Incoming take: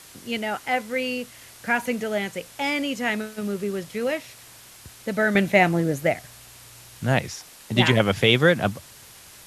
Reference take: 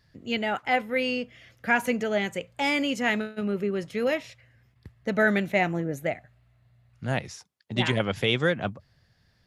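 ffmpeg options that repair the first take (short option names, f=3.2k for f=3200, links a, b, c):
-af "afwtdn=0.0056,asetnsamples=n=441:p=0,asendcmd='5.35 volume volume -6.5dB',volume=0dB"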